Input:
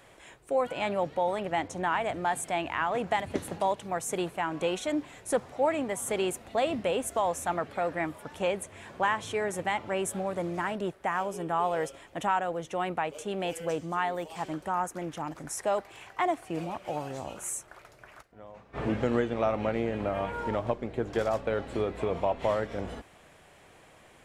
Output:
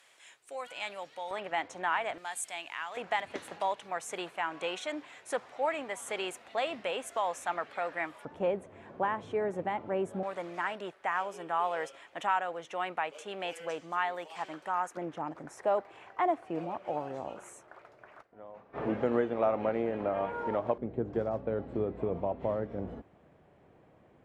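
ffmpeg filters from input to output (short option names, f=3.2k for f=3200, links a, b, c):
-af "asetnsamples=n=441:p=0,asendcmd='1.31 bandpass f 1900;2.18 bandpass f 6400;2.97 bandpass f 2000;8.25 bandpass f 350;10.23 bandpass f 1800;14.97 bandpass f 600;20.78 bandpass f 200',bandpass=f=5.2k:t=q:w=0.51:csg=0"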